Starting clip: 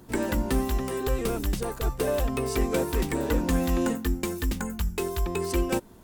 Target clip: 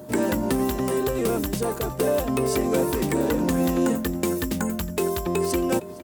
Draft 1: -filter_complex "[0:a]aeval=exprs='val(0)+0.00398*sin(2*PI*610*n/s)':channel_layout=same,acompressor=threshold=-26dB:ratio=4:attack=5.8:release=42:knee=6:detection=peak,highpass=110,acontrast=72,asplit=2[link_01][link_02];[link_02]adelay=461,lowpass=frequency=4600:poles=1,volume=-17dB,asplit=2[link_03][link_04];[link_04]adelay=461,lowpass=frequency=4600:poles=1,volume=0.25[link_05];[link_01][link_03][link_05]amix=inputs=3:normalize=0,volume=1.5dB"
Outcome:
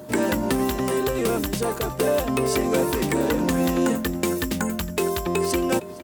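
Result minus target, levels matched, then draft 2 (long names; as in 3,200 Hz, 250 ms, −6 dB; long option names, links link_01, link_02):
2,000 Hz band +3.0 dB
-filter_complex "[0:a]aeval=exprs='val(0)+0.00398*sin(2*PI*610*n/s)':channel_layout=same,acompressor=threshold=-26dB:ratio=4:attack=5.8:release=42:knee=6:detection=peak,highpass=110,equalizer=frequency=2600:width_type=o:width=2.9:gain=-4.5,acontrast=72,asplit=2[link_01][link_02];[link_02]adelay=461,lowpass=frequency=4600:poles=1,volume=-17dB,asplit=2[link_03][link_04];[link_04]adelay=461,lowpass=frequency=4600:poles=1,volume=0.25[link_05];[link_01][link_03][link_05]amix=inputs=3:normalize=0,volume=1.5dB"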